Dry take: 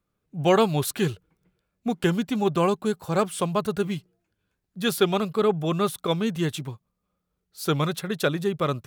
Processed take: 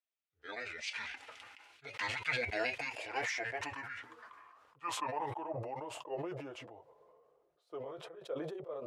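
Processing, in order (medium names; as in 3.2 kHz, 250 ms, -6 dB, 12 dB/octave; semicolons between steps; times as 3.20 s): pitch bend over the whole clip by -11.5 st ending unshifted; Doppler pass-by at 2.37 s, 6 m/s, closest 2.7 m; resonant low shelf 310 Hz -9 dB, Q 1.5; comb of notches 190 Hz; band-pass sweep 2.6 kHz -> 570 Hz, 2.67–6.22 s; decay stretcher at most 28 dB/s; trim +9.5 dB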